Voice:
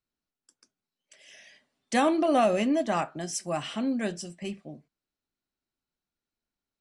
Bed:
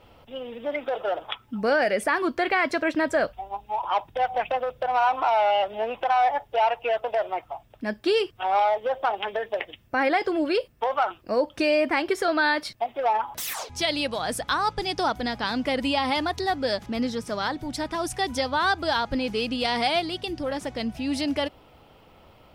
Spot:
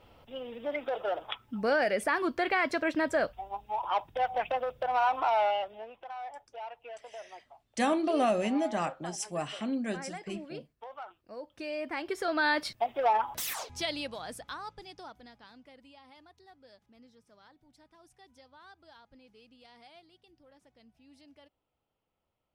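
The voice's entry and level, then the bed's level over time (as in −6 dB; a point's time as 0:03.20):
5.85 s, −4.0 dB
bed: 0:05.44 −5 dB
0:05.96 −20 dB
0:11.37 −20 dB
0:12.63 −2.5 dB
0:13.37 −2.5 dB
0:15.87 −31.5 dB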